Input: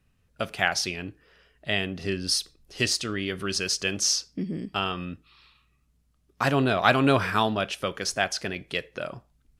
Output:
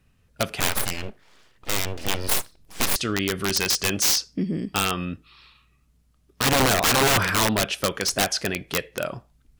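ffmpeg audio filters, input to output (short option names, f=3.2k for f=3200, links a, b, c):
-filter_complex "[0:a]asettb=1/sr,asplit=3[a][b][c];[a]atrim=end=0.604[d];[b]atrim=start=0.6:end=2.96,asetpts=PTS-STARTPTS,afade=t=in:d=0.004:c=qsin,afade=t=out:st=2.356:d=0.004:c=qsin,aeval=exprs='abs(val(0))':c=same[e];[c]atrim=start=2.956[f];[d][e]acrossfade=d=0.004:c1=hsin:c2=qsin[g];[g][f]acrossfade=d=0.004:c1=qsin:c2=hsin,acontrast=26,aeval=exprs='(mod(4.73*val(0)+1,2)-1)/4.73':c=same"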